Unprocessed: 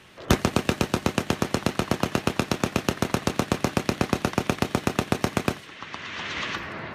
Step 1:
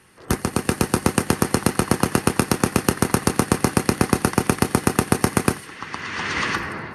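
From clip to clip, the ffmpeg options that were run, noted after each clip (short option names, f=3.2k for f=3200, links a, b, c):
-af "dynaudnorm=f=180:g=7:m=13dB,superequalizer=8b=0.501:12b=0.631:13b=0.447:16b=3.55,volume=-2.5dB"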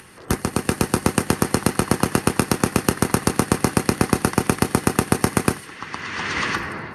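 -af "acompressor=mode=upward:threshold=-38dB:ratio=2.5"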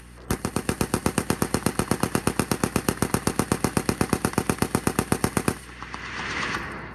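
-af "aeval=exprs='val(0)+0.01*(sin(2*PI*60*n/s)+sin(2*PI*2*60*n/s)/2+sin(2*PI*3*60*n/s)/3+sin(2*PI*4*60*n/s)/4+sin(2*PI*5*60*n/s)/5)':c=same,volume=-4.5dB"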